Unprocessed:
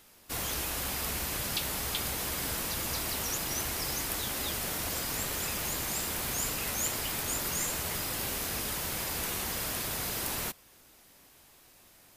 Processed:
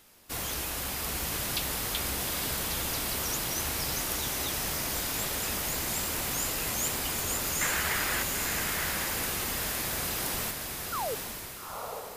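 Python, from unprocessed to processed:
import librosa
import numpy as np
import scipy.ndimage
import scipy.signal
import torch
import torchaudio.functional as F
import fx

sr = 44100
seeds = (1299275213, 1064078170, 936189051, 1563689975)

y = fx.peak_eq(x, sr, hz=1700.0, db=13.0, octaves=1.3, at=(7.61, 8.23))
y = fx.spec_paint(y, sr, seeds[0], shape='fall', start_s=10.92, length_s=0.23, low_hz=400.0, high_hz=1500.0, level_db=-33.0)
y = fx.echo_diffused(y, sr, ms=860, feedback_pct=41, wet_db=-3.5)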